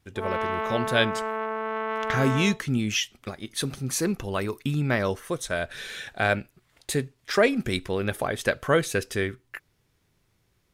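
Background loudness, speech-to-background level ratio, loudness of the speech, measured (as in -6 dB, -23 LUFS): -30.0 LUFS, 3.0 dB, -27.0 LUFS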